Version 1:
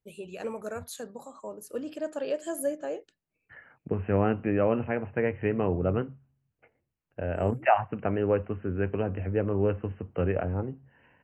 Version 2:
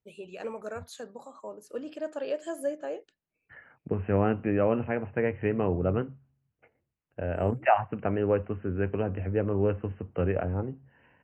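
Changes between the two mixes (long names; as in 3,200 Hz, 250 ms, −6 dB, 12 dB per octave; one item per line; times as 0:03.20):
first voice: add low-shelf EQ 180 Hz −9.5 dB
master: add high-frequency loss of the air 63 metres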